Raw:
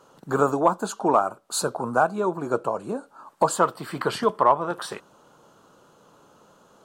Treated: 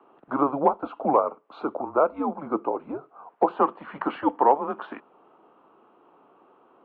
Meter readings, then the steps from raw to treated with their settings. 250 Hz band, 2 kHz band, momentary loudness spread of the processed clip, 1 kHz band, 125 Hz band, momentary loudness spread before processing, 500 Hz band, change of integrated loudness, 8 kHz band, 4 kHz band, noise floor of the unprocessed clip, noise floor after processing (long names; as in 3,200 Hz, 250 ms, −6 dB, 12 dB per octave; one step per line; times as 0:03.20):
+0.5 dB, −8.0 dB, 13 LU, −1.0 dB, −9.5 dB, 10 LU, −1.5 dB, −1.5 dB, below −40 dB, below −15 dB, −58 dBFS, −60 dBFS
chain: single-sideband voice off tune −140 Hz 270–3,300 Hz
three-way crossover with the lows and the highs turned down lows −20 dB, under 220 Hz, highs −14 dB, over 2,400 Hz